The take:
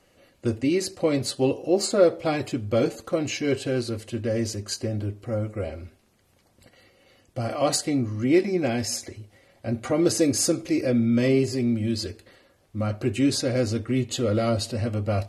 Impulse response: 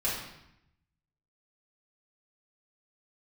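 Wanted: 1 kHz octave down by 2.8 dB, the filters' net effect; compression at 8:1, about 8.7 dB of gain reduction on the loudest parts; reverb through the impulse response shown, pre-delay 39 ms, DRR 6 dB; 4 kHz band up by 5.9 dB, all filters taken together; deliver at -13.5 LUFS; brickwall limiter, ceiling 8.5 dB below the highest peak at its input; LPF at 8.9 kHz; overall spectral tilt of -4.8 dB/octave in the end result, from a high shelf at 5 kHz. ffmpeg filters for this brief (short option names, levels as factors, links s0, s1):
-filter_complex "[0:a]lowpass=8900,equalizer=f=1000:t=o:g=-5,equalizer=f=4000:t=o:g=4.5,highshelf=f=5000:g=6,acompressor=threshold=0.0708:ratio=8,alimiter=limit=0.0944:level=0:latency=1,asplit=2[s0][s1];[1:a]atrim=start_sample=2205,adelay=39[s2];[s1][s2]afir=irnorm=-1:irlink=0,volume=0.2[s3];[s0][s3]amix=inputs=2:normalize=0,volume=5.96"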